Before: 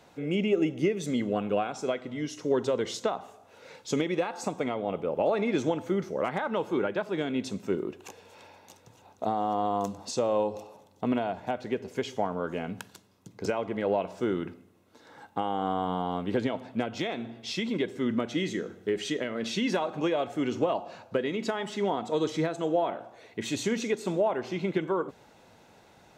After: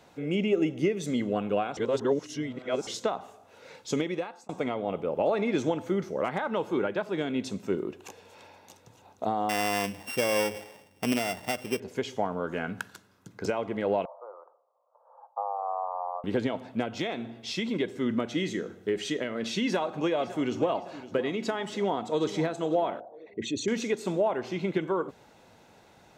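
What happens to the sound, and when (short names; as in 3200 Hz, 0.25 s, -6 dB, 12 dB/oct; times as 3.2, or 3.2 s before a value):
1.77–2.87 reverse
3.8–4.49 fade out equal-power
9.49–11.8 sample sorter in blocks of 16 samples
12.53–13.44 bell 1500 Hz +10.5 dB 0.57 oct
14.05–16.24 Chebyshev band-pass 520–1200 Hz, order 4
19.64–20.74 echo throw 0.56 s, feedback 40%, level -15.5 dB
21.7–22.25 echo throw 0.5 s, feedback 35%, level -13.5 dB
23–23.68 formant sharpening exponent 2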